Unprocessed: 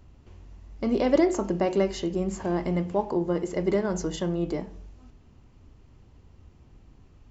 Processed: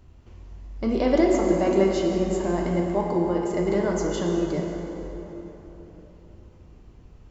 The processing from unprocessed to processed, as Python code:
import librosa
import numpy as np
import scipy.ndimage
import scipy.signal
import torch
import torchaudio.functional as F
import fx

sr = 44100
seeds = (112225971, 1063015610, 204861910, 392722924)

y = fx.rev_plate(x, sr, seeds[0], rt60_s=3.9, hf_ratio=0.6, predelay_ms=0, drr_db=0.0)